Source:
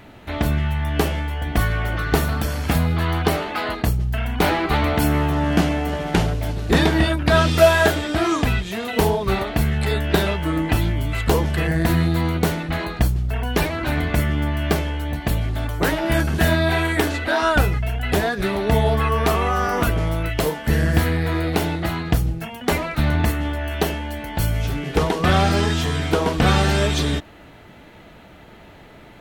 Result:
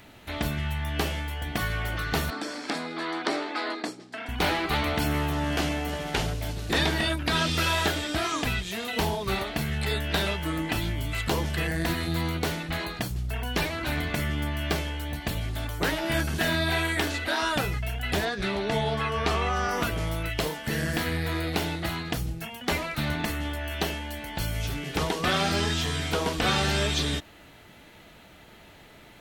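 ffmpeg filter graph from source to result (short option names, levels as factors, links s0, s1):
-filter_complex "[0:a]asettb=1/sr,asplit=3[s0][s1][s2];[s0]atrim=end=2.304[s3];[s1]atrim=start=2.3:end=4.29,asetpts=PTS-STARTPTS,afade=t=in:d=0.004:c=qsin,afade=t=out:st=1.986:d=0.004:c=qsin,aeval=exprs='(mod(2*val(0)+1,2)-1)/2':c=same,highpass=f=260:w=0.5412,highpass=f=260:w=1.3066,equalizer=f=300:t=q:w=4:g=9,equalizer=f=2900:t=q:w=4:g=-8,equalizer=f=6400:t=q:w=4:g=-7,lowpass=f=7200:w=0.5412,lowpass=f=7200:w=1.3066[s4];[s2]atrim=start=4.286[s5];[s3][s4]acrossfade=d=0.004:c1=hsin:c2=qsin[s6];[s6][s5]acrossfade=d=0.004:c1=qsin:c2=hsin,asettb=1/sr,asplit=3[s7][s8][s9];[s7]atrim=end=18.254[s10];[s8]atrim=start=18.25:end=19.71,asetpts=PTS-STARTPTS,afade=t=in:d=0.004:c=qsin,afade=t=out:st=1.456:d=0.004:c=qsin,lowpass=5700,asplit=2[s11][s12];[s12]adelay=15,volume=0.224[s13];[s11][s13]amix=inputs=2:normalize=0,atrim=end_sample=64386[s14];[s9]atrim=start=19.706[s15];[s10][s14]acrossfade=d=0.004:c1=hsin:c2=qsin[s16];[s16][s15]acrossfade=d=0.004:c1=qsin:c2=hsin,acrossover=split=5400[s17][s18];[s18]acompressor=threshold=0.00891:ratio=4:attack=1:release=60[s19];[s17][s19]amix=inputs=2:normalize=0,highshelf=f=2600:g=11,afftfilt=real='re*lt(hypot(re,im),1.12)':imag='im*lt(hypot(re,im),1.12)':win_size=1024:overlap=0.75,volume=0.398"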